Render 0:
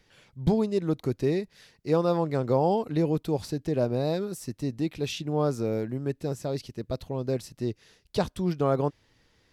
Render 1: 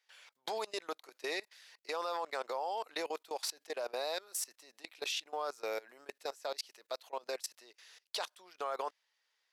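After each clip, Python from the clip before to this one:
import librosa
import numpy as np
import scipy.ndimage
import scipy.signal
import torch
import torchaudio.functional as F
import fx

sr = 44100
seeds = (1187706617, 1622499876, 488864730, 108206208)

y = scipy.signal.sosfilt(scipy.signal.bessel(4, 1000.0, 'highpass', norm='mag', fs=sr, output='sos'), x)
y = fx.level_steps(y, sr, step_db=22)
y = F.gain(torch.from_numpy(y), 7.5).numpy()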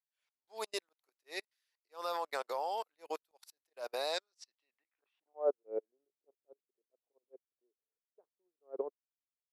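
y = fx.auto_swell(x, sr, attack_ms=155.0)
y = fx.filter_sweep_lowpass(y, sr, from_hz=12000.0, to_hz=400.0, start_s=3.97, end_s=5.6, q=2.7)
y = fx.upward_expand(y, sr, threshold_db=-55.0, expansion=2.5)
y = F.gain(torch.from_numpy(y), 7.0).numpy()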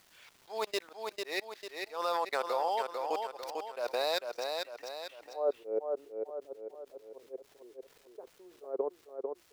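y = scipy.signal.medfilt(x, 5)
y = fx.echo_feedback(y, sr, ms=447, feedback_pct=23, wet_db=-9.0)
y = fx.env_flatten(y, sr, amount_pct=50)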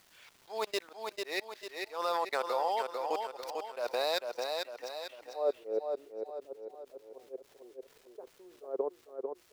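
y = fx.echo_feedback(x, sr, ms=439, feedback_pct=48, wet_db=-17.0)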